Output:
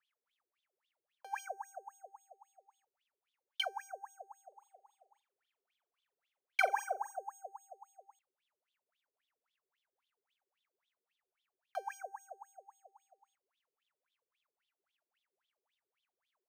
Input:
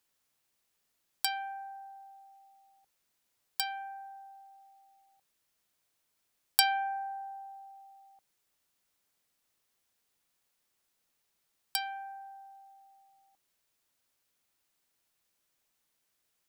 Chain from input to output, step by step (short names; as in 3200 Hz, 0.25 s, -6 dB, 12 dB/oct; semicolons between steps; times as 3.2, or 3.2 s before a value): careless resampling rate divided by 6×, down filtered, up zero stuff; wah 3.7 Hz 380–3600 Hz, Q 20; 4.48–7.16 flutter echo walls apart 7.3 m, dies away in 0.22 s; gain +12 dB